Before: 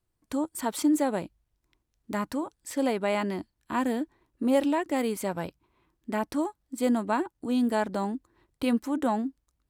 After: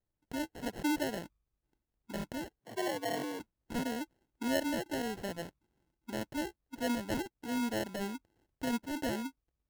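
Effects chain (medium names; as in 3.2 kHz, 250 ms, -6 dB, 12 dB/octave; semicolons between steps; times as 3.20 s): sample-and-hold 37×; 2.60–3.40 s: frequency shift +94 Hz; trim -8.5 dB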